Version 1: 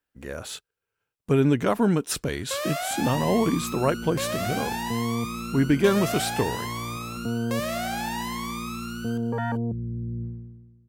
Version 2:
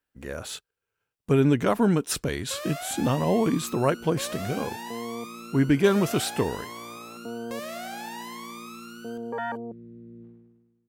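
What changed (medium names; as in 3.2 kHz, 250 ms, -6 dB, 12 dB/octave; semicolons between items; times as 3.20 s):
first sound -6.5 dB; second sound: add high-pass 380 Hz 12 dB/octave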